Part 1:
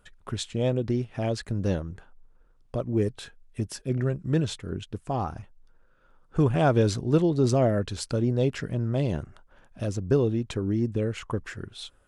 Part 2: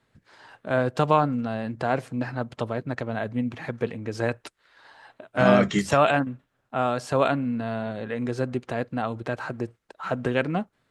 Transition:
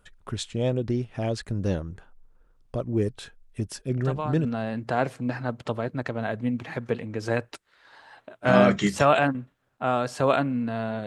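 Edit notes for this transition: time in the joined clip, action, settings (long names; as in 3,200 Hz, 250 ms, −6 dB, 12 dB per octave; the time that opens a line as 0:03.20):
part 1
0:04.04: mix in part 2 from 0:00.96 0.41 s −12 dB
0:04.45: continue with part 2 from 0:01.37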